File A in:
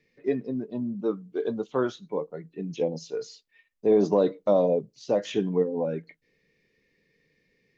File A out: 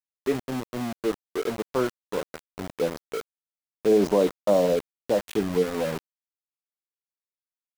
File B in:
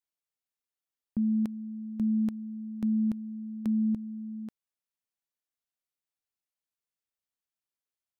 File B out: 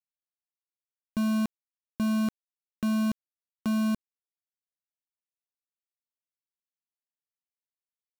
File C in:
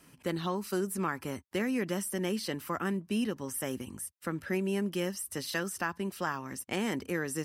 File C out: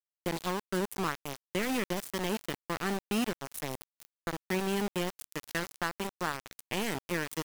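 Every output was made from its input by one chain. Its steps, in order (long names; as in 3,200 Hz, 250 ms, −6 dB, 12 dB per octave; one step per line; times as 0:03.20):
centre clipping without the shift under −29.5 dBFS
level +1 dB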